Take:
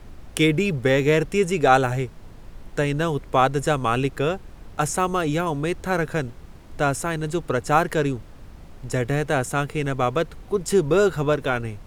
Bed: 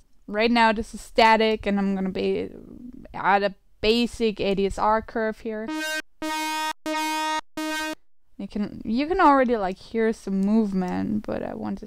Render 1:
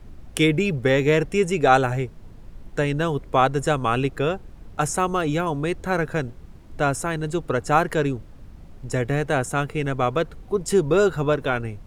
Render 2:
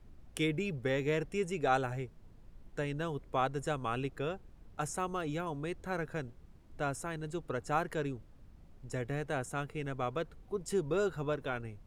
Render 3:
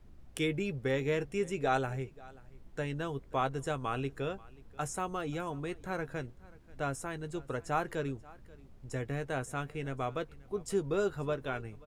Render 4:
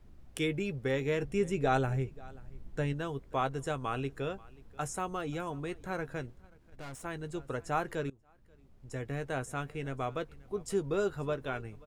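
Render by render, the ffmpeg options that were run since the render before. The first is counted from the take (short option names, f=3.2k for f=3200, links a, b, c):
-af "afftdn=nr=6:nf=-44"
-af "volume=-13.5dB"
-filter_complex "[0:a]asplit=2[a][b];[b]adelay=15,volume=-12.5dB[c];[a][c]amix=inputs=2:normalize=0,aecho=1:1:534:0.075"
-filter_complex "[0:a]asettb=1/sr,asplit=3[a][b][c];[a]atrim=end=1.224[d];[b]atrim=start=1.22:end=2.93,asetpts=PTS-STARTPTS,afade=t=in:d=0.004:c=qsin,afade=t=out:st=1.706:d=0.004:c=qsin,lowshelf=f=270:g=7.5[e];[c]atrim=start=2.926[f];[d][e]acrossfade=d=0.004:c1=hsin:c2=qsin[g];[g][f]acrossfade=d=0.004:c1=qsin:c2=hsin,asettb=1/sr,asplit=3[h][i][j];[h]atrim=end=6.404[k];[i]atrim=start=6.4:end=7.05,asetpts=PTS-STARTPTS,afade=t=in:d=0.004:c=qsin,afade=t=out:st=0.646:d=0.004:c=qsin,aeval=exprs='(tanh(126*val(0)+0.6)-tanh(0.6))/126':c=same[l];[j]atrim=start=7.046[m];[k][l]acrossfade=d=0.004:c1=hsin:c2=qsin[n];[n][m]acrossfade=d=0.004:c1=qsin:c2=hsin,asplit=2[o][p];[o]atrim=end=8.1,asetpts=PTS-STARTPTS,afade=t=out:st=8.096:d=0.004:c=hsin:silence=0.0749894[q];[p]atrim=start=8.1,asetpts=PTS-STARTPTS,afade=t=in:d=1.14:silence=0.0749894[r];[q][r]concat=n=2:v=0:a=1"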